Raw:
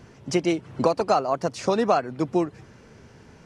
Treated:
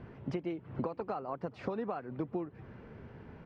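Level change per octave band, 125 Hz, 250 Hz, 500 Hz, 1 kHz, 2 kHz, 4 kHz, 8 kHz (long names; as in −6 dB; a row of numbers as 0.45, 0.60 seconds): −9.0 dB, −12.0 dB, −15.0 dB, −16.5 dB, −15.5 dB, −23.0 dB, below −30 dB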